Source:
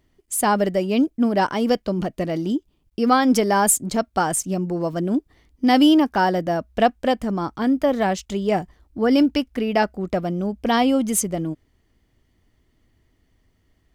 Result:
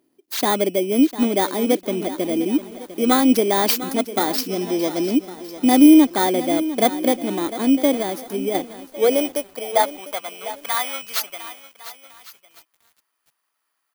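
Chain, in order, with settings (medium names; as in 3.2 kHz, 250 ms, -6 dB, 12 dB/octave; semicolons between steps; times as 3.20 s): bit-reversed sample order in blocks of 16 samples; 4.38–5.09 s: peaking EQ 5.3 kHz +14 dB 0.34 oct; delay 1105 ms -19 dB; high-pass sweep 300 Hz -> 1.2 kHz, 8.44–10.53 s; 7.95–8.55 s: compression, threshold -18 dBFS, peak gain reduction 6 dB; bit-crushed delay 701 ms, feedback 35%, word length 6-bit, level -13.5 dB; trim -2 dB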